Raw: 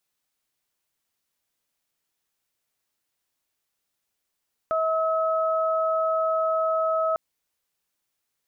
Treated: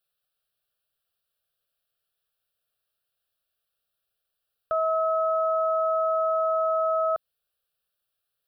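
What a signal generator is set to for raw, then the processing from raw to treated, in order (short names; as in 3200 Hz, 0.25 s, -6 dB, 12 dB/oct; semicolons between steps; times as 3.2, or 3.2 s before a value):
steady additive tone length 2.45 s, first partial 643 Hz, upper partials -2.5 dB, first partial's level -22.5 dB
fixed phaser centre 1400 Hz, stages 8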